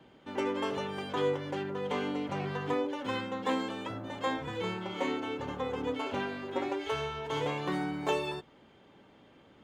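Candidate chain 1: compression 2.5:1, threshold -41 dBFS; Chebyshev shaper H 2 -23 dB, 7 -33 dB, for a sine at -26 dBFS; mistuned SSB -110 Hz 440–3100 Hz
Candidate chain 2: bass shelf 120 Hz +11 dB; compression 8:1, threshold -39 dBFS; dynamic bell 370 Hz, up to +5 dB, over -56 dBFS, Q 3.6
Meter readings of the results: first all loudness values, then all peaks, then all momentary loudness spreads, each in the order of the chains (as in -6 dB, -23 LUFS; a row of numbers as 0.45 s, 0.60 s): -45.0 LUFS, -41.5 LUFS; -28.0 dBFS, -27.5 dBFS; 9 LU, 6 LU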